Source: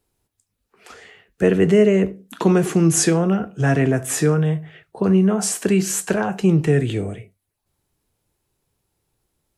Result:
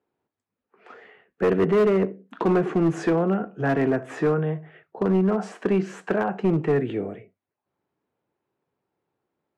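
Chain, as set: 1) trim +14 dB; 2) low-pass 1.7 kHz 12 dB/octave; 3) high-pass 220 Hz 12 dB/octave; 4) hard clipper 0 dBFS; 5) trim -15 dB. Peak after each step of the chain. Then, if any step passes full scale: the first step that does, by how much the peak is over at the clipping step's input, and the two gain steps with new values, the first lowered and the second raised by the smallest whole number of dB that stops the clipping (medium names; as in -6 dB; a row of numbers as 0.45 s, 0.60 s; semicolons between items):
+11.0 dBFS, +10.5 dBFS, +8.5 dBFS, 0.0 dBFS, -15.0 dBFS; step 1, 8.5 dB; step 1 +5 dB, step 5 -6 dB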